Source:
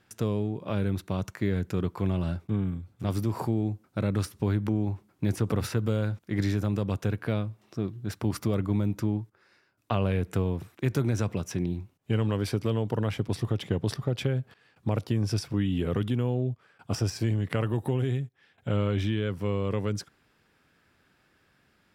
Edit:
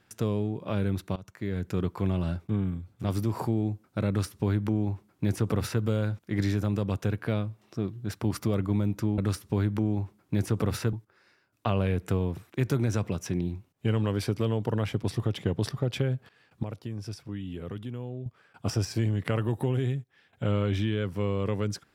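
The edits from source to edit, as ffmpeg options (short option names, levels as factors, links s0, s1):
-filter_complex "[0:a]asplit=6[s0][s1][s2][s3][s4][s5];[s0]atrim=end=1.16,asetpts=PTS-STARTPTS,afade=t=out:st=1.156:d=0.004:c=hsin:silence=0.112202[s6];[s1]atrim=start=1.16:end=9.182,asetpts=PTS-STARTPTS,afade=t=in:d=0.61:silence=0.112202[s7];[s2]atrim=start=4.078:end=5.832[s8];[s3]atrim=start=9.178:end=14.882[s9];[s4]atrim=start=14.878:end=16.512,asetpts=PTS-STARTPTS,volume=0.335[s10];[s5]atrim=start=16.508[s11];[s6][s7]concat=n=2:v=0:a=1[s12];[s12][s8]acrossfade=d=0.004:c1=hsin:c2=hsin[s13];[s13][s9]acrossfade=d=0.004:c1=hsin:c2=hsin[s14];[s14][s10]acrossfade=d=0.004:c1=hsin:c2=hsin[s15];[s15][s11]acrossfade=d=0.004:c1=hsin:c2=hsin"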